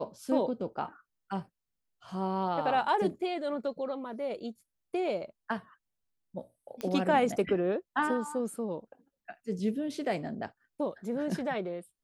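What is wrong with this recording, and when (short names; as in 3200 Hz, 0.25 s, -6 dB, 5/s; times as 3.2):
6.81 pop -21 dBFS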